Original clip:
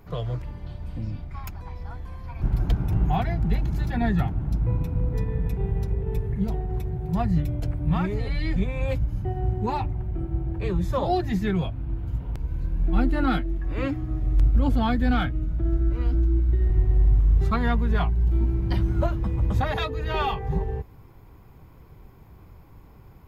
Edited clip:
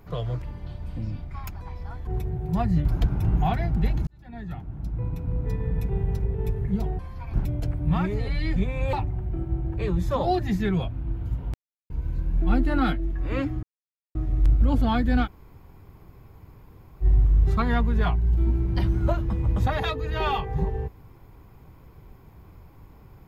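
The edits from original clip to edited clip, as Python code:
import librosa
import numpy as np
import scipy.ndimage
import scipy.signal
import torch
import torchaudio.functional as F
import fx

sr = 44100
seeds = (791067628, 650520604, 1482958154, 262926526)

y = fx.edit(x, sr, fx.swap(start_s=2.07, length_s=0.46, other_s=6.67, other_length_s=0.78),
    fx.fade_in_span(start_s=3.75, length_s=1.73),
    fx.cut(start_s=8.93, length_s=0.82),
    fx.insert_silence(at_s=12.36, length_s=0.36),
    fx.insert_silence(at_s=14.09, length_s=0.52),
    fx.room_tone_fill(start_s=15.19, length_s=1.78, crossfade_s=0.06), tone=tone)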